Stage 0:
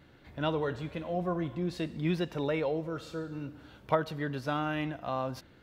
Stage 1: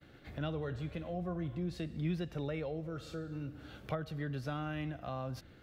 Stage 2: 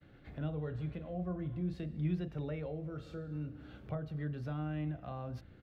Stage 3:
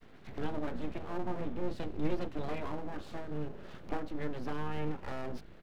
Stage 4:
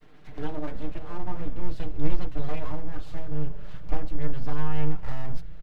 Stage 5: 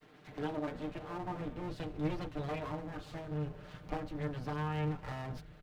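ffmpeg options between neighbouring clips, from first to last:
ffmpeg -i in.wav -filter_complex "[0:a]agate=range=-33dB:threshold=-54dB:ratio=3:detection=peak,bandreject=frequency=960:width=5.7,acrossover=split=130[link_01][link_02];[link_02]acompressor=threshold=-52dB:ratio=2[link_03];[link_01][link_03]amix=inputs=2:normalize=0,volume=4dB" out.wav
ffmpeg -i in.wav -filter_complex "[0:a]bass=frequency=250:gain=4,treble=frequency=4000:gain=-9,acrossover=split=870[link_01][link_02];[link_01]asplit=2[link_03][link_04];[link_04]adelay=33,volume=-5dB[link_05];[link_03][link_05]amix=inputs=2:normalize=0[link_06];[link_02]alimiter=level_in=15.5dB:limit=-24dB:level=0:latency=1:release=354,volume=-15.5dB[link_07];[link_06][link_07]amix=inputs=2:normalize=0,volume=-4dB" out.wav
ffmpeg -i in.wav -af "aeval=exprs='abs(val(0))':channel_layout=same,volume=5.5dB" out.wav
ffmpeg -i in.wav -af "aecho=1:1:6.6:0.65,asubboost=boost=7.5:cutoff=110" out.wav
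ffmpeg -i in.wav -af "highpass=frequency=150:poles=1,volume=-1.5dB" out.wav

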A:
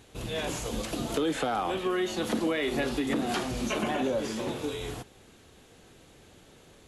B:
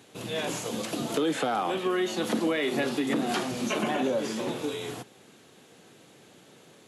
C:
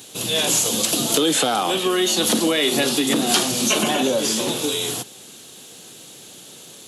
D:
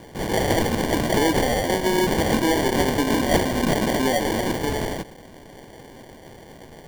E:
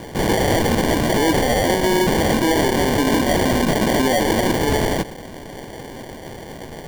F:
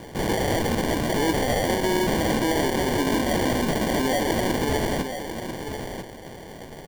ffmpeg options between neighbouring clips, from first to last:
ffmpeg -i in.wav -af "highpass=frequency=130:width=0.5412,highpass=frequency=130:width=1.3066,volume=1.5dB" out.wav
ffmpeg -i in.wav -af "aexciter=amount=3.6:drive=5:freq=2900,volume=6.5dB" out.wav
ffmpeg -i in.wav -af "acrusher=samples=34:mix=1:aa=0.000001,volume=-1dB" out.wav
ffmpeg -i in.wav -af "alimiter=limit=-20dB:level=0:latency=1:release=68,volume=9dB" out.wav
ffmpeg -i in.wav -af "aecho=1:1:993:0.376,volume=-6dB" out.wav

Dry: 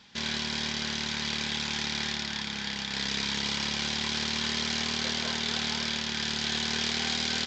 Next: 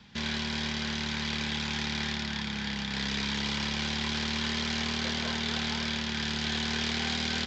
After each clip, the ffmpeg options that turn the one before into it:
ffmpeg -i in.wav -filter_complex "[0:a]acrossover=split=350|740[link_01][link_02][link_03];[link_01]alimiter=level_in=14.5dB:limit=-24dB:level=0:latency=1:release=19,volume=-14.5dB[link_04];[link_04][link_02][link_03]amix=inputs=3:normalize=0,bass=frequency=250:gain=10,treble=frequency=4000:gain=-6" out.wav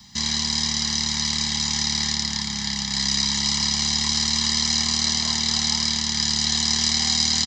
ffmpeg -i in.wav -filter_complex "[0:a]aecho=1:1:1:0.79,acrossover=split=1300[link_01][link_02];[link_02]aexciter=amount=9.2:drive=2.9:freq=4300[link_03];[link_01][link_03]amix=inputs=2:normalize=0" out.wav

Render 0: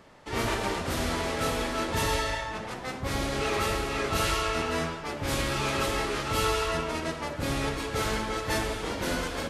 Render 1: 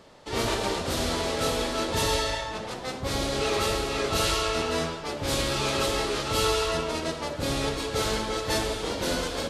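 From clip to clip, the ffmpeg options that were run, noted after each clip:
ffmpeg -i in.wav -af "equalizer=frequency=500:width_type=o:width=1:gain=4,equalizer=frequency=2000:width_type=o:width=1:gain=-3,equalizer=frequency=4000:width_type=o:width=1:gain=6,equalizer=frequency=8000:width_type=o:width=1:gain=3" out.wav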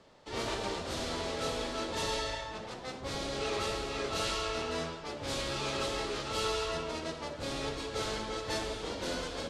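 ffmpeg -i in.wav -filter_complex "[0:a]lowpass=8100,acrossover=split=320|5600[link_01][link_02][link_03];[link_01]aeval=exprs='0.0316*(abs(mod(val(0)/0.0316+3,4)-2)-1)':channel_layout=same[link_04];[link_04][link_02][link_03]amix=inputs=3:normalize=0,volume=-7.5dB" out.wav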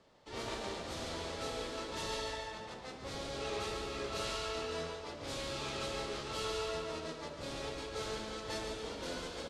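ffmpeg -i in.wav -af "aecho=1:1:144|288|432|576|720|864:0.447|0.214|0.103|0.0494|0.0237|0.0114,volume=-6dB" out.wav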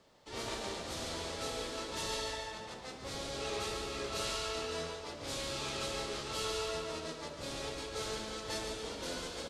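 ffmpeg -i in.wav -af "highshelf=frequency=5300:gain=7.5" out.wav

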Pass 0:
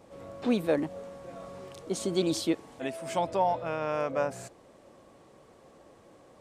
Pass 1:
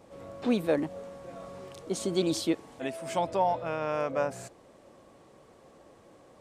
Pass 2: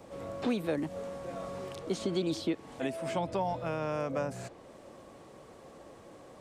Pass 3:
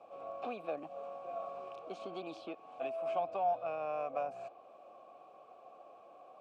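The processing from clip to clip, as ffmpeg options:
ffmpeg -i in.wav -af anull out.wav
ffmpeg -i in.wav -filter_complex "[0:a]acrossover=split=290|1100|4800[link_01][link_02][link_03][link_04];[link_01]acompressor=threshold=-38dB:ratio=4[link_05];[link_02]acompressor=threshold=-39dB:ratio=4[link_06];[link_03]acompressor=threshold=-47dB:ratio=4[link_07];[link_04]acompressor=threshold=-60dB:ratio=4[link_08];[link_05][link_06][link_07][link_08]amix=inputs=4:normalize=0,volume=4dB" out.wav
ffmpeg -i in.wav -filter_complex "[0:a]aeval=exprs='0.1*(cos(1*acos(clip(val(0)/0.1,-1,1)))-cos(1*PI/2))+0.00501*(cos(6*acos(clip(val(0)/0.1,-1,1)))-cos(6*PI/2))':channel_layout=same,asplit=3[link_01][link_02][link_03];[link_01]bandpass=frequency=730:width_type=q:width=8,volume=0dB[link_04];[link_02]bandpass=frequency=1090:width_type=q:width=8,volume=-6dB[link_05];[link_03]bandpass=frequency=2440:width_type=q:width=8,volume=-9dB[link_06];[link_04][link_05][link_06]amix=inputs=3:normalize=0,volume=5.5dB" out.wav

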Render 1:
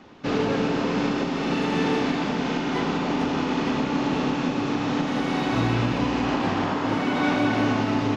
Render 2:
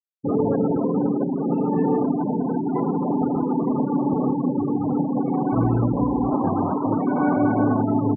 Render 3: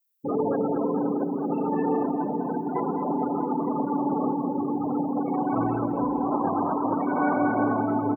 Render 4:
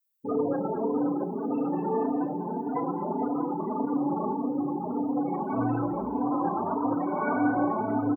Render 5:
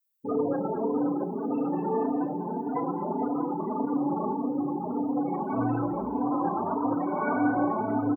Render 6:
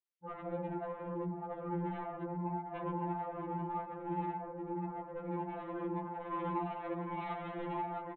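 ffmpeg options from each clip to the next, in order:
ffmpeg -i in.wav -af "afftfilt=real='re*gte(hypot(re,im),0.112)':imag='im*gte(hypot(re,im),0.112)':win_size=1024:overlap=0.75,lowpass=frequency=1300:width=0.5412,lowpass=frequency=1300:width=1.3066,volume=3.5dB" out.wav
ffmpeg -i in.wav -filter_complex "[0:a]aemphasis=mode=production:type=riaa,asplit=2[link_01][link_02];[link_02]aecho=0:1:218|436|654|872|1090|1308:0.282|0.149|0.0792|0.042|0.0222|0.0118[link_03];[link_01][link_03]amix=inputs=2:normalize=0" out.wav
ffmpeg -i in.wav -filter_complex "[0:a]asplit=2[link_01][link_02];[link_02]adelay=34,volume=-14dB[link_03];[link_01][link_03]amix=inputs=2:normalize=0,asplit=2[link_04][link_05];[link_05]adelay=3.3,afreqshift=1.7[link_06];[link_04][link_06]amix=inputs=2:normalize=1" out.wav
ffmpeg -i in.wav -af anull out.wav
ffmpeg -i in.wav -af "aresample=8000,asoftclip=type=tanh:threshold=-25.5dB,aresample=44100,afftfilt=real='re*2.83*eq(mod(b,8),0)':imag='im*2.83*eq(mod(b,8),0)':win_size=2048:overlap=0.75,volume=-4dB" out.wav

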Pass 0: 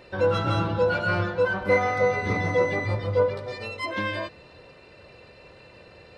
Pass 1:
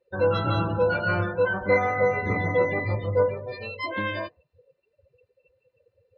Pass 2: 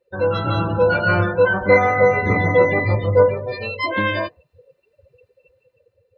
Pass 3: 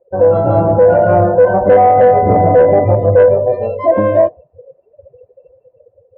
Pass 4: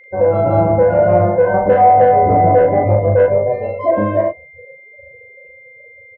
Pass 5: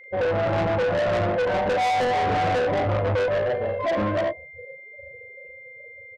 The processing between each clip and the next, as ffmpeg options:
ffmpeg -i in.wav -af "afftdn=noise_reduction=33:noise_floor=-35" out.wav
ffmpeg -i in.wav -af "dynaudnorm=framelen=310:gausssize=5:maxgain=6dB,volume=2.5dB" out.wav
ffmpeg -i in.wav -af "lowpass=frequency=670:width_type=q:width=4.9,asoftclip=type=tanh:threshold=-1.5dB,alimiter=level_in=7dB:limit=-1dB:release=50:level=0:latency=1,volume=-1dB" out.wav
ffmpeg -i in.wav -filter_complex "[0:a]aeval=exprs='val(0)+0.0126*sin(2*PI*2100*n/s)':channel_layout=same,asplit=2[link_01][link_02];[link_02]aecho=0:1:24|39:0.158|0.668[link_03];[link_01][link_03]amix=inputs=2:normalize=0,volume=-4dB" out.wav
ffmpeg -i in.wav -af "asoftclip=type=tanh:threshold=-18.5dB,volume=-2dB" out.wav

